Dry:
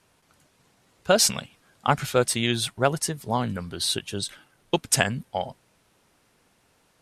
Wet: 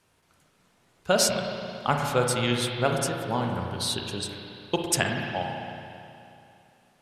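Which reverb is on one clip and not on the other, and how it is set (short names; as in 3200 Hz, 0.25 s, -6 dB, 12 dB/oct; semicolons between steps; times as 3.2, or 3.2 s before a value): spring tank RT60 2.7 s, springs 33/54 ms, chirp 30 ms, DRR 1 dB; gain -3.5 dB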